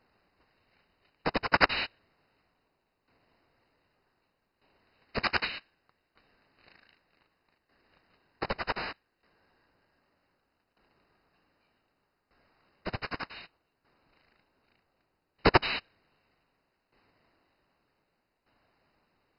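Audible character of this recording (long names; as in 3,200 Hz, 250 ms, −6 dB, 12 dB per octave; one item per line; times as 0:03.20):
aliases and images of a low sample rate 6,600 Hz, jitter 20%
tremolo saw down 0.65 Hz, depth 75%
MP2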